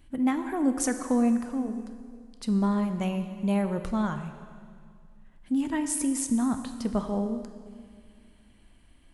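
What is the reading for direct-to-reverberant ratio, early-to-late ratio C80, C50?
7.5 dB, 10.0 dB, 9.0 dB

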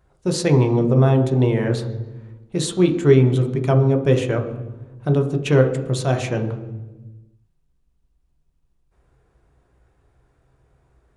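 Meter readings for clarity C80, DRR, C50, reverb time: 12.0 dB, 4.0 dB, 9.5 dB, 1.2 s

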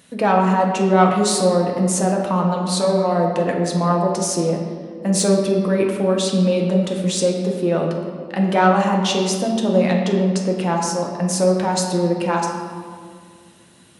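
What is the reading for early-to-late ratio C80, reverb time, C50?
5.0 dB, 2.1 s, 3.5 dB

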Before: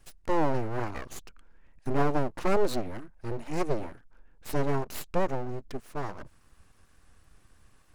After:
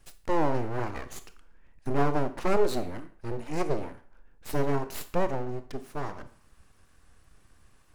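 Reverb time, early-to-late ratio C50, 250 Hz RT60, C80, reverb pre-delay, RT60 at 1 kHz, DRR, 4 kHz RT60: 0.50 s, 14.0 dB, 0.45 s, 18.0 dB, 23 ms, 0.50 s, 10.5 dB, 0.45 s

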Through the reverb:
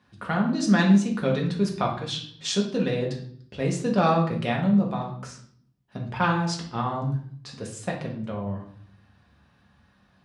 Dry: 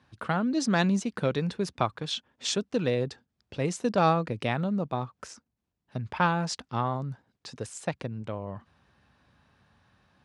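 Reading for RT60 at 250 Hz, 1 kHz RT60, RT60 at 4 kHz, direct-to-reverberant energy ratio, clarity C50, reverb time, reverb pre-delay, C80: 0.90 s, 0.50 s, 0.50 s, -1.0 dB, 6.5 dB, 0.55 s, 4 ms, 11.0 dB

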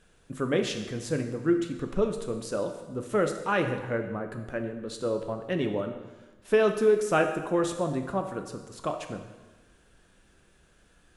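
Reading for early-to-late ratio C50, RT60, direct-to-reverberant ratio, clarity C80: 7.5 dB, 1.2 s, 5.0 dB, 9.5 dB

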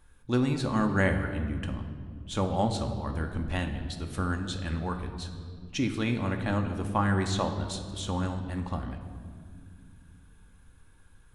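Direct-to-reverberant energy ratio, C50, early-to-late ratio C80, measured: 4.0 dB, 8.0 dB, 9.5 dB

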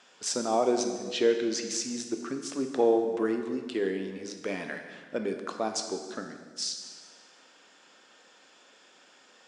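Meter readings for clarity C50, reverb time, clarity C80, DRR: 7.0 dB, 1.6 s, 8.5 dB, 5.0 dB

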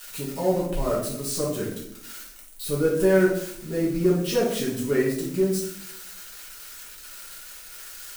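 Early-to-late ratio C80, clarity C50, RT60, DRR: 8.0 dB, 3.5 dB, 0.75 s, -6.5 dB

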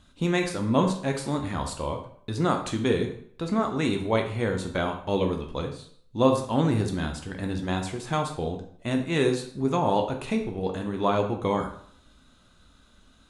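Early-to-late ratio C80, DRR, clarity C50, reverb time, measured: 12.0 dB, 3.0 dB, 8.0 dB, 0.60 s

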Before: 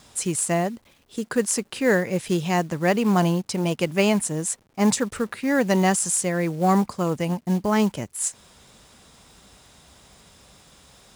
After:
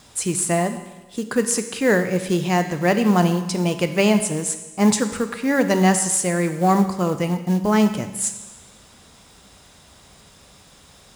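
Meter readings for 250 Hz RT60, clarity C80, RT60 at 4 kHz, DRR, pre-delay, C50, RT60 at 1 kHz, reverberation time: 1.2 s, 11.5 dB, 1.1 s, 8.0 dB, 11 ms, 10.0 dB, 1.1 s, 1.1 s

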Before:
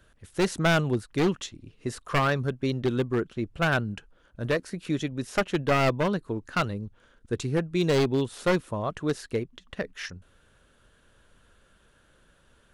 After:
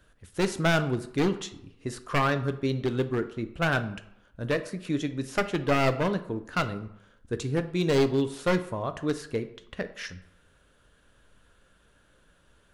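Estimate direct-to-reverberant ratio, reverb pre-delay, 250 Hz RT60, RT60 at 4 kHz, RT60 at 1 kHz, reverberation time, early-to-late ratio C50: 9.0 dB, 4 ms, 0.70 s, 0.45 s, 0.75 s, 0.70 s, 13.5 dB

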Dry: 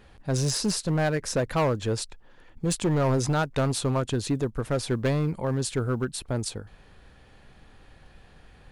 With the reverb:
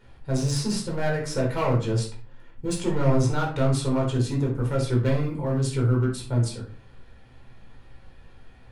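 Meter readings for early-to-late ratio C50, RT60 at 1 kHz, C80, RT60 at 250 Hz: 6.5 dB, 0.40 s, 12.0 dB, 0.60 s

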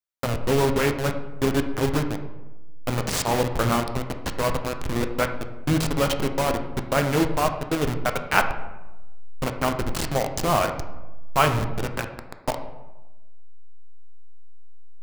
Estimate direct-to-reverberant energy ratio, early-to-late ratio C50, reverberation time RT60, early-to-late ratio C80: 6.0 dB, 9.0 dB, 1.1 s, 11.5 dB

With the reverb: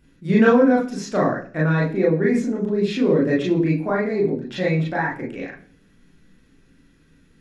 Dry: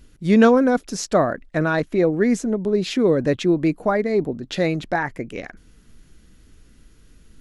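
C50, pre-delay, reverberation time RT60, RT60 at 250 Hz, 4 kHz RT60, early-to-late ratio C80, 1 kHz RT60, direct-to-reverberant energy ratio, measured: 7.5 dB, 26 ms, 0.45 s, 0.70 s, 0.50 s, 12.5 dB, 0.40 s, -5.0 dB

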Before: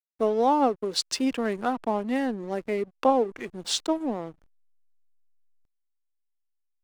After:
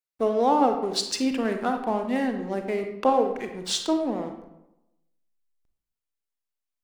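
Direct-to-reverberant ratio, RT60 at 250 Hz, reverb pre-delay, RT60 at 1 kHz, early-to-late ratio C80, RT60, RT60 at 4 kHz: 5.0 dB, 1.0 s, 30 ms, 0.85 s, 9.5 dB, 0.90 s, 0.55 s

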